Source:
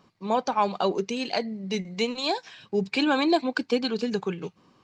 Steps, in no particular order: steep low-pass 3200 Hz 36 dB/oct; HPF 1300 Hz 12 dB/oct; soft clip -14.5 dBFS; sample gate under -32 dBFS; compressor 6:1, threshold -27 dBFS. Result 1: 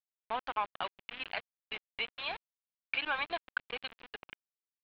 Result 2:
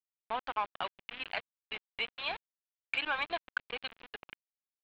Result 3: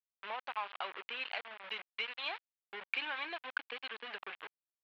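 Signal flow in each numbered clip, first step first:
HPF > soft clip > sample gate > compressor > steep low-pass; HPF > sample gate > steep low-pass > soft clip > compressor; compressor > sample gate > steep low-pass > soft clip > HPF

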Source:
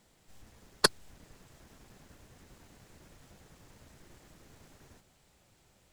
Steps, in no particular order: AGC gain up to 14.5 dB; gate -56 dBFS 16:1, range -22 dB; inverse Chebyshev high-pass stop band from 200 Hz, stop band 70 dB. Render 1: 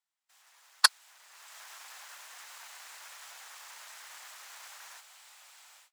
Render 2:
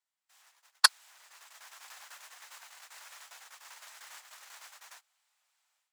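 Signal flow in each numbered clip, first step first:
AGC > gate > inverse Chebyshev high-pass; gate > AGC > inverse Chebyshev high-pass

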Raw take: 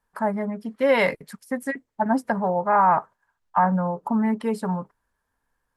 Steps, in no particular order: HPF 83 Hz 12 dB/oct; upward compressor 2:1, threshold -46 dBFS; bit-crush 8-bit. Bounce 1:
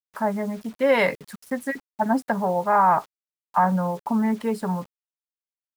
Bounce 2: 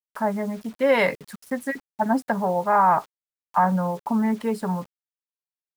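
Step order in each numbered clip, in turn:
upward compressor > HPF > bit-crush; HPF > bit-crush > upward compressor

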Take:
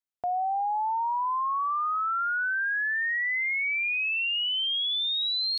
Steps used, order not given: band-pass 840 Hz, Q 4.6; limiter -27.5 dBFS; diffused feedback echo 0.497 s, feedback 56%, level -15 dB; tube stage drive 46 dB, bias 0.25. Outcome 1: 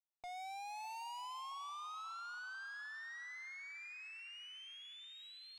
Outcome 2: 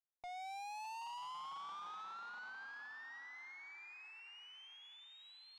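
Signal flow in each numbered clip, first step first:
band-pass > limiter > tube stage > diffused feedback echo; diffused feedback echo > limiter > band-pass > tube stage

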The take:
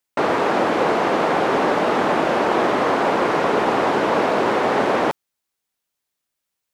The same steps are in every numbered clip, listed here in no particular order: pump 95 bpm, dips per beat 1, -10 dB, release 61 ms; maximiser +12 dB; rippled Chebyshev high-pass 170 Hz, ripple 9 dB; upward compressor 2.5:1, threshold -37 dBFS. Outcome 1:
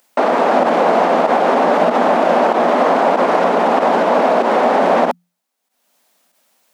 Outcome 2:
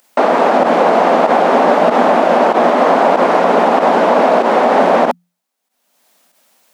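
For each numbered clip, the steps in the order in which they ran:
maximiser > pump > upward compressor > rippled Chebyshev high-pass; rippled Chebyshev high-pass > maximiser > upward compressor > pump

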